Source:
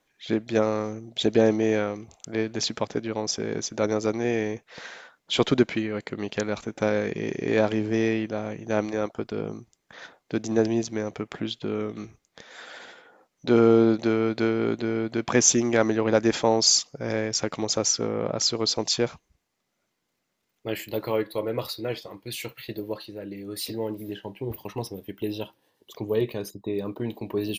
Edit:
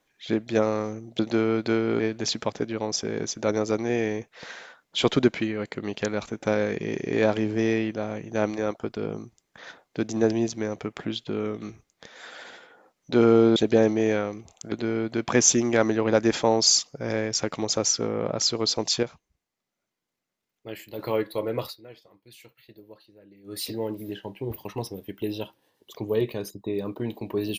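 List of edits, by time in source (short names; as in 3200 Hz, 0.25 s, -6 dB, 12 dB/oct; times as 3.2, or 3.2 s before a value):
1.19–2.35 swap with 13.91–14.72
19.03–20.99 gain -7.5 dB
21.64–23.55 dip -16 dB, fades 0.12 s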